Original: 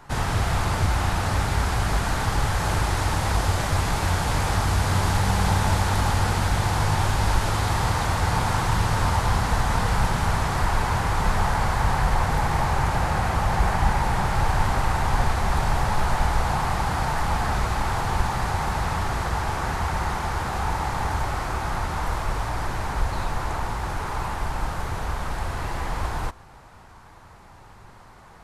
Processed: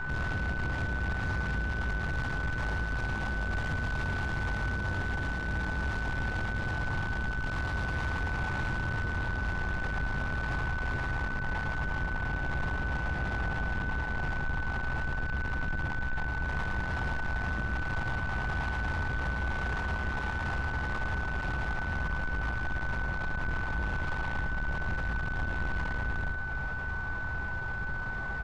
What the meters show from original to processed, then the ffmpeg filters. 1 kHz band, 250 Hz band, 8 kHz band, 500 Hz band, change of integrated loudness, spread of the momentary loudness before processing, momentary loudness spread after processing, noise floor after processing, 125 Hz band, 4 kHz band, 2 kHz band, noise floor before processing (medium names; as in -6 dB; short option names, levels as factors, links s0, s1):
-14.0 dB, -7.5 dB, -22.5 dB, -11.0 dB, -8.5 dB, 7 LU, 1 LU, -34 dBFS, -9.5 dB, -13.5 dB, 0.0 dB, -47 dBFS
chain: -filter_complex "[0:a]acompressor=threshold=0.0224:ratio=6,lowpass=3800,lowshelf=f=150:g=11,asplit=2[s0][s1];[s1]adelay=15,volume=0.398[s2];[s0][s2]amix=inputs=2:normalize=0,asoftclip=type=tanh:threshold=0.0112,aecho=1:1:110:0.501,aeval=exprs='val(0)+0.00794*sin(2*PI*1500*n/s)':c=same,volume=2.24"